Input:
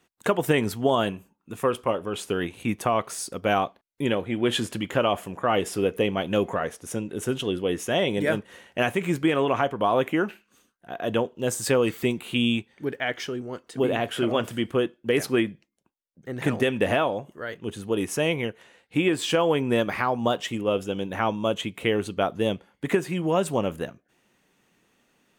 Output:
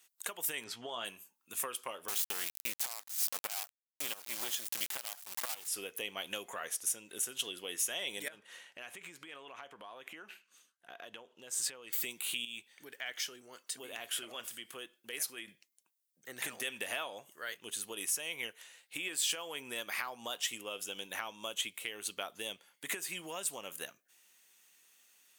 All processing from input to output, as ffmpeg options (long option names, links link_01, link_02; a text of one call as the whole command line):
ffmpeg -i in.wav -filter_complex "[0:a]asettb=1/sr,asplit=3[link_01][link_02][link_03];[link_01]atrim=end=0.644[link_04];[link_02]atrim=start=0.64:end=1.05,asetpts=PTS-STARTPTS,afade=type=in:duration=0.004:curve=qsin,afade=type=out:start_time=0.406:duration=0.004:curve=qsin,lowpass=3900,asplit=2[link_05][link_06];[link_06]adelay=17,volume=-7.5dB[link_07];[link_05][link_07]amix=inputs=2:normalize=0,atrim=end_sample=18081[link_08];[link_03]atrim=start=1.046[link_09];[link_04][link_08]acrossfade=duration=0.004:curve1=hsin:curve2=qsin[link_10];[link_10][link_09]acrossfade=duration=0.004:curve1=qsin:curve2=hsin,asettb=1/sr,asplit=3[link_11][link_12][link_13];[link_11]atrim=end=2.084[link_14];[link_12]atrim=start=2.08:end=5.68,asetpts=PTS-STARTPTS,afade=type=in:duration=0.004:curve=qsin,afade=type=out:start_time=3.596:duration=0.004:curve=qsin,acrossover=split=8000[link_15][link_16];[link_16]acompressor=threshold=-50dB:ratio=4:attack=1:release=60[link_17];[link_15][link_17]amix=inputs=2:normalize=0,equalizer=frequency=820:width_type=o:width=0.56:gain=14,acrusher=bits=3:dc=4:mix=0:aa=0.000001[link_18];[link_13]atrim=start=5.676[link_19];[link_14][link_18]acrossfade=duration=0.004:curve1=hsin:curve2=qsin[link_20];[link_20][link_19]acrossfade=duration=0.004:curve1=qsin:curve2=hsin,asettb=1/sr,asplit=3[link_21][link_22][link_23];[link_21]atrim=end=8.284[link_24];[link_22]atrim=start=8.28:end=11.93,asetpts=PTS-STARTPTS,afade=type=in:duration=0.004:curve=qsin,afade=type=out:start_time=3.646:duration=0.004:curve=qsin,aemphasis=mode=reproduction:type=50fm,acompressor=threshold=-34dB:ratio=12:attack=3.2:release=140:knee=1:detection=peak[link_25];[link_23]atrim=start=11.926[link_26];[link_24][link_25]acrossfade=duration=0.004:curve1=hsin:curve2=qsin[link_27];[link_27][link_26]acrossfade=duration=0.004:curve1=qsin:curve2=hsin,asettb=1/sr,asplit=3[link_28][link_29][link_30];[link_28]atrim=end=12.454[link_31];[link_29]atrim=start=12.45:end=15.48,asetpts=PTS-STARTPTS,afade=type=in:duration=0.004:curve=qsin,afade=type=out:start_time=3.026:duration=0.004:curve=qsin,acompressor=threshold=-38dB:ratio=2:attack=3.2:release=140:knee=1:detection=peak,asoftclip=type=hard:threshold=-20.5dB[link_32];[link_30]atrim=start=15.476[link_33];[link_31][link_32]acrossfade=duration=0.004:curve1=hsin:curve2=qsin[link_34];[link_34][link_33]acrossfade=duration=0.004:curve1=qsin:curve2=hsin,acompressor=threshold=-26dB:ratio=6,aderivative,alimiter=level_in=5.5dB:limit=-24dB:level=0:latency=1:release=250,volume=-5.5dB,volume=8dB" out.wav